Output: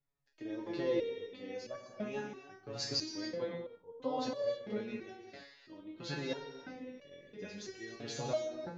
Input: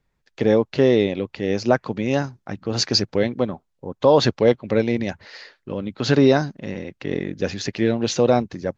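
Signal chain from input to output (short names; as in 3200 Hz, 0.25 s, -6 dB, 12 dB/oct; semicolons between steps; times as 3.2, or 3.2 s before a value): non-linear reverb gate 0.34 s flat, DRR 2.5 dB; stepped resonator 3 Hz 140–570 Hz; gain -6 dB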